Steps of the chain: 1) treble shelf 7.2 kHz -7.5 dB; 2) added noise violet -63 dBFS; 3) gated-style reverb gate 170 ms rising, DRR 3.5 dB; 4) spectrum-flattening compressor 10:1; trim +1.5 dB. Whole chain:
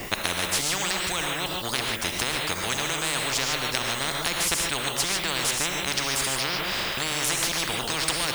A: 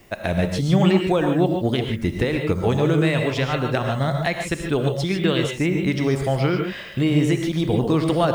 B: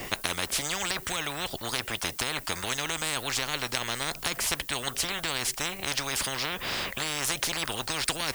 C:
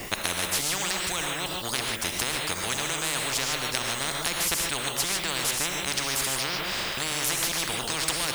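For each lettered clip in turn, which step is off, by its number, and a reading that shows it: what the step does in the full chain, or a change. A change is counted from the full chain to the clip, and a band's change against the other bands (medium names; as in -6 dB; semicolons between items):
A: 4, 8 kHz band -22.0 dB; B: 3, crest factor change +2.0 dB; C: 1, 8 kHz band +2.0 dB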